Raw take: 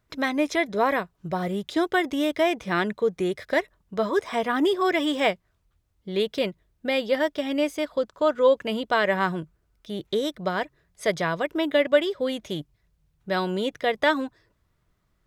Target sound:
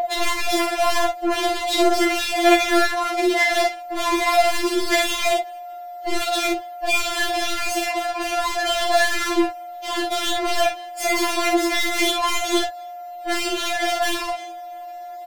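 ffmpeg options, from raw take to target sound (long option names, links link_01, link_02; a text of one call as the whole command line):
ffmpeg -i in.wav -filter_complex "[0:a]asplit=3[link_01][link_02][link_03];[link_01]afade=type=out:start_time=11.07:duration=0.02[link_04];[link_02]aecho=1:1:0.9:0.94,afade=type=in:start_time=11.07:duration=0.02,afade=type=out:start_time=12.3:duration=0.02[link_05];[link_03]afade=type=in:start_time=12.3:duration=0.02[link_06];[link_04][link_05][link_06]amix=inputs=3:normalize=0,flanger=delay=19:depth=4.2:speed=0.19,asplit=2[link_07][link_08];[link_08]highpass=frequency=720:poles=1,volume=36dB,asoftclip=type=tanh:threshold=-7.5dB[link_09];[link_07][link_09]amix=inputs=2:normalize=0,lowpass=frequency=2700:poles=1,volume=-6dB,aeval=exprs='val(0)+0.0891*sin(2*PI*710*n/s)':channel_layout=same,asoftclip=type=hard:threshold=-23.5dB,aecho=1:1:47|60:0.562|0.335,afftfilt=real='re*4*eq(mod(b,16),0)':imag='im*4*eq(mod(b,16),0)':win_size=2048:overlap=0.75,volume=5dB" out.wav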